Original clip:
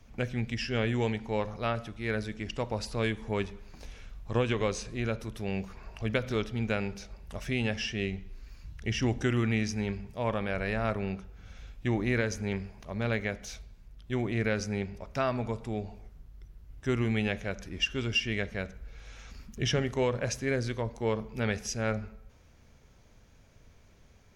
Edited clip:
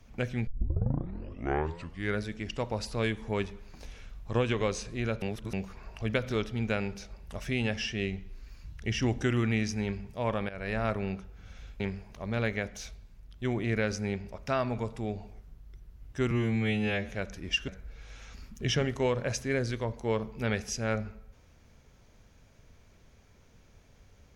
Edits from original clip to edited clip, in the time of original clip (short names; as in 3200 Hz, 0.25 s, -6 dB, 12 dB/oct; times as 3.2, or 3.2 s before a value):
0.47 tape start 1.76 s
5.22–5.53 reverse
10.49–10.76 fade in, from -15.5 dB
11.8–12.48 cut
16.99–17.38 stretch 2×
17.97–18.65 cut